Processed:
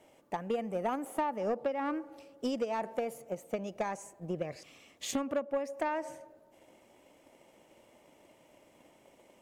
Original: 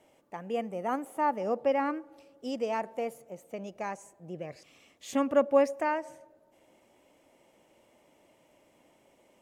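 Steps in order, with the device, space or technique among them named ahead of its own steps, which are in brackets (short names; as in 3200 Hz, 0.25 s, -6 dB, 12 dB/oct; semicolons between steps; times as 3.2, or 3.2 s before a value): drum-bus smash (transient shaper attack +8 dB, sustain +2 dB; compressor 12:1, threshold -28 dBFS, peak gain reduction 16.5 dB; soft clip -25 dBFS, distortion -16 dB); gain +1.5 dB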